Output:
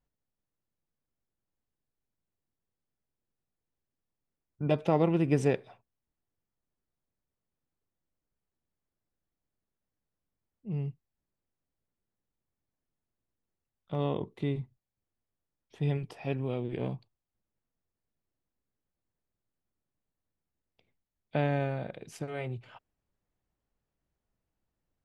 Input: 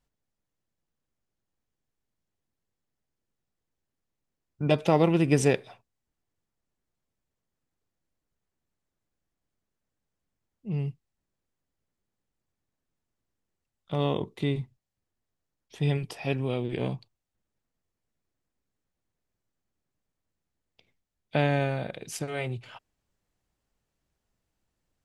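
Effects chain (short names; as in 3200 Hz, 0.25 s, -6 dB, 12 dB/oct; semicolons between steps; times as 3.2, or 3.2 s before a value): high shelf 2900 Hz -11 dB; gain -3.5 dB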